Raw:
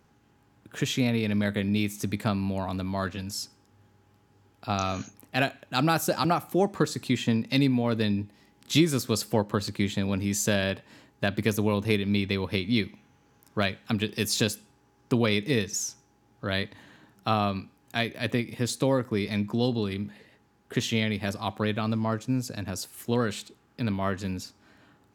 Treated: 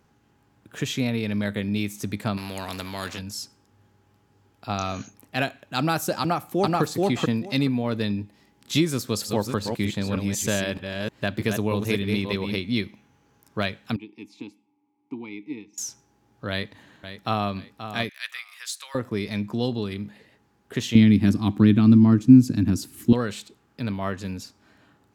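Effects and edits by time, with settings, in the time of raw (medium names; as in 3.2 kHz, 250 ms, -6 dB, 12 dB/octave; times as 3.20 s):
2.37–3.19 s: spectrum-flattening compressor 2:1
6.20–6.82 s: echo throw 430 ms, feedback 15%, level 0 dB
8.92–12.59 s: chunks repeated in reverse 310 ms, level -5 dB
13.96–15.78 s: vowel filter u
16.50–17.51 s: echo throw 530 ms, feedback 30%, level -10.5 dB
18.09–18.95 s: high-pass 1.3 kHz 24 dB/octave
20.95–23.13 s: resonant low shelf 400 Hz +10.5 dB, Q 3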